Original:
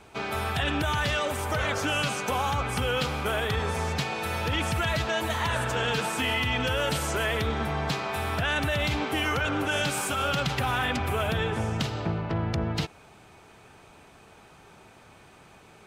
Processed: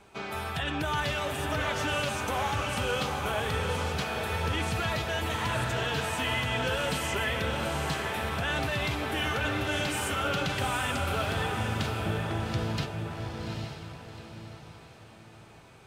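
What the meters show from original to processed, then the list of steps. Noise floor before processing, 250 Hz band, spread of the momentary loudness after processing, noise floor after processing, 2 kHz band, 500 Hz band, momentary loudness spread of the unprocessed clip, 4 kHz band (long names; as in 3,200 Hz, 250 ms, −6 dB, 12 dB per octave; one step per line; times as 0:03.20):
−53 dBFS, −2.5 dB, 8 LU, −51 dBFS, −2.5 dB, −2.5 dB, 4 LU, −2.5 dB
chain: flanger 0.14 Hz, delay 5 ms, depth 6.4 ms, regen +65%
feedback delay with all-pass diffusion 803 ms, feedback 40%, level −3.5 dB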